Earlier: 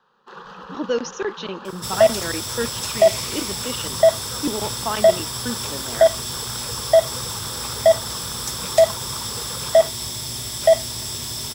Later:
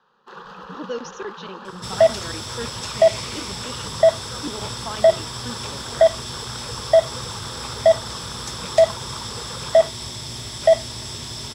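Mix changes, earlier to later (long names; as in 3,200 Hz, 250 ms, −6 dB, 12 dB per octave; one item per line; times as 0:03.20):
speech −7.0 dB
second sound: add high-frequency loss of the air 66 metres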